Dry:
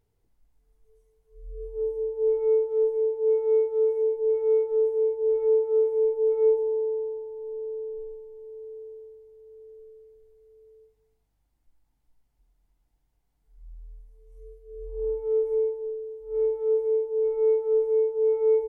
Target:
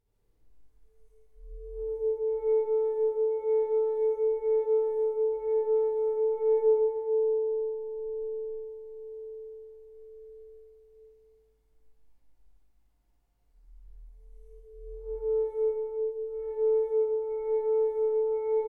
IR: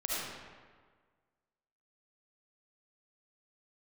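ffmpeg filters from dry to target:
-filter_complex "[0:a]aecho=1:1:57|78:0.473|0.335[s0];[1:a]atrim=start_sample=2205,asetrate=39690,aresample=44100[s1];[s0][s1]afir=irnorm=-1:irlink=0,volume=0.473"

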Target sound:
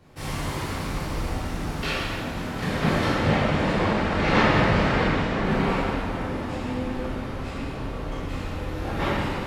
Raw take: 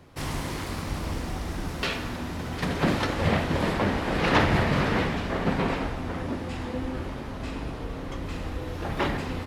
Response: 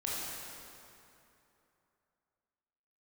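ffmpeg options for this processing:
-filter_complex "[0:a]asettb=1/sr,asplit=3[s0][s1][s2];[s0]atrim=end=3.074[s3];[s1]atrim=start=3.07:end=5.44,asetpts=PTS-STARTPTS,afade=t=in:d=0.004:c=qsin,afade=t=out:st=2.366:d=0.004:c=qsin,lowpass=7900[s4];[s2]atrim=start=5.436[s5];[s3][s4]acrossfade=d=0.004:c1=hsin:c2=qsin[s6];[s6][s5]acrossfade=d=0.004:c1=qsin:c2=hsin[s7];[1:a]atrim=start_sample=2205,asetrate=79380,aresample=44100[s8];[s7][s8]afir=irnorm=-1:irlink=0,volume=1.41"

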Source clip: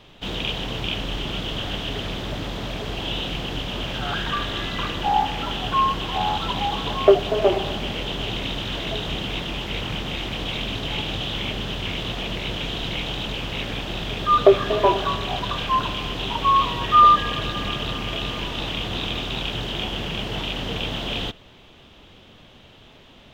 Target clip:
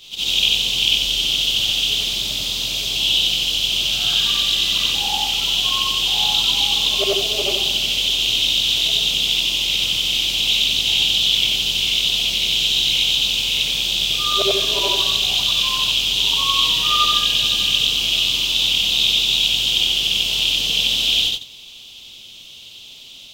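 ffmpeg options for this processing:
-af "afftfilt=real='re':imag='-im':win_size=8192:overlap=0.75,aexciter=amount=15.8:drive=6:freq=2700,volume=0.668"

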